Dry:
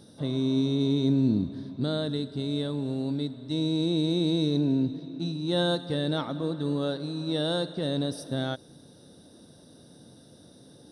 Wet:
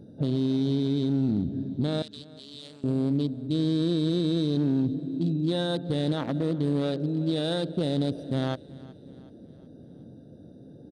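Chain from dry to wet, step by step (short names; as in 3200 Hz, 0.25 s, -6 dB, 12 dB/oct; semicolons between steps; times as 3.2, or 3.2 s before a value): Wiener smoothing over 41 samples; limiter -25 dBFS, peak gain reduction 9.5 dB; 2.02–2.84 band-pass 5900 Hz, Q 0.78; feedback echo 0.373 s, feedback 50%, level -21.5 dB; gain +6.5 dB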